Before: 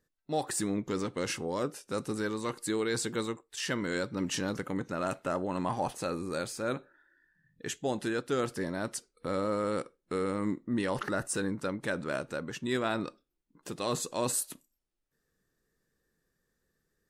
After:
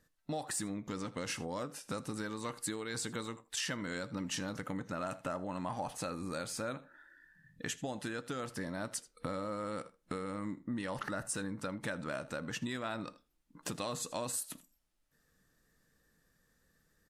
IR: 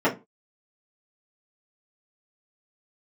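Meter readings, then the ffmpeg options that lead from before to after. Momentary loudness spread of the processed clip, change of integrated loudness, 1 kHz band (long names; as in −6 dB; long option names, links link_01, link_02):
5 LU, −6.0 dB, −5.5 dB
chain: -filter_complex "[0:a]aecho=1:1:80:0.075,asplit=2[link_01][link_02];[1:a]atrim=start_sample=2205,lowshelf=frequency=490:gain=-12[link_03];[link_02][link_03]afir=irnorm=-1:irlink=0,volume=-30dB[link_04];[link_01][link_04]amix=inputs=2:normalize=0,acompressor=threshold=-41dB:ratio=6,equalizer=frequency=390:width_type=o:width=0.46:gain=-9,aresample=32000,aresample=44100,volume=6.5dB"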